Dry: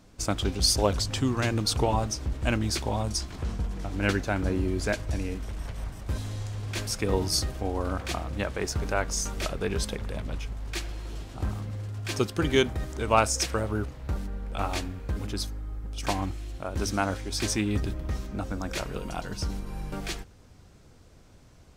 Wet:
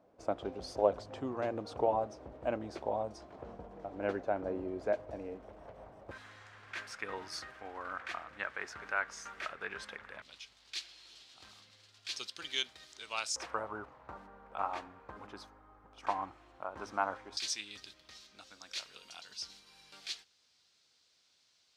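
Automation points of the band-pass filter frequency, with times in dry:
band-pass filter, Q 2.1
610 Hz
from 6.11 s 1.6 kHz
from 10.22 s 4.1 kHz
from 13.36 s 1 kHz
from 17.37 s 4.2 kHz

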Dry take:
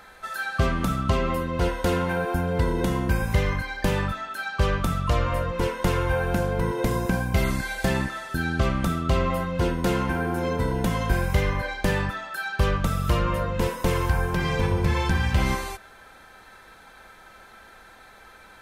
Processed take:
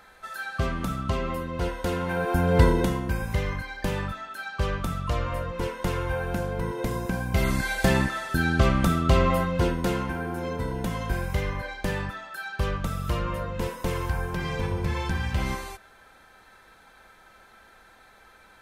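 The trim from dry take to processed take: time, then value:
1.98 s -4.5 dB
2.63 s +6 dB
3.02 s -4.5 dB
7.14 s -4.5 dB
7.68 s +2.5 dB
9.40 s +2.5 dB
10.13 s -5 dB

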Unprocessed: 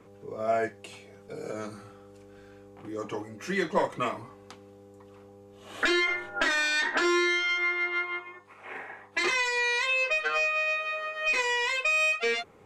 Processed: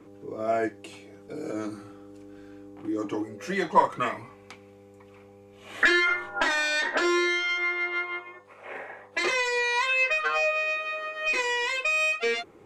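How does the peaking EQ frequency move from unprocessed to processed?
peaking EQ +12 dB 0.35 oct
3.18 s 310 Hz
4.23 s 2.3 kHz
5.68 s 2.3 kHz
6.83 s 550 Hz
9.61 s 550 Hz
10.02 s 2.2 kHz
10.71 s 340 Hz

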